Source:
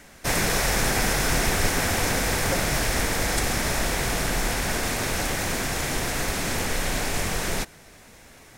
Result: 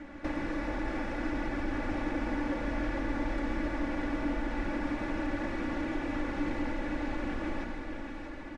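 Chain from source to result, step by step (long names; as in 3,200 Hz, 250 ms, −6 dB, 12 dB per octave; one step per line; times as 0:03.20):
downward compressor 6 to 1, threshold −36 dBFS, peak gain reduction 17.5 dB
low-pass filter 1,900 Hz 12 dB per octave
parametric band 300 Hz +13.5 dB 0.3 octaves
comb filter 3.5 ms, depth 69%
echo with a time of its own for lows and highs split 1,100 Hz, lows 430 ms, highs 632 ms, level −6.5 dB
convolution reverb RT60 0.80 s, pre-delay 113 ms, DRR 4.5 dB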